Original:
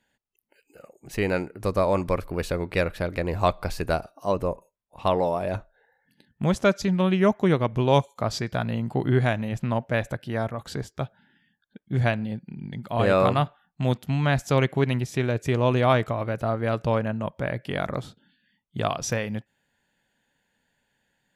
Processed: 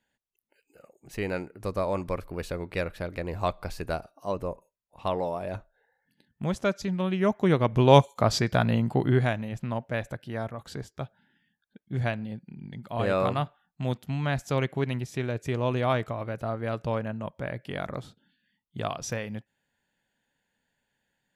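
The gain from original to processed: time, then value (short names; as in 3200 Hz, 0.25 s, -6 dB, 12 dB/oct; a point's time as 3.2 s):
7.12 s -6 dB
7.92 s +3.5 dB
8.74 s +3.5 dB
9.49 s -5.5 dB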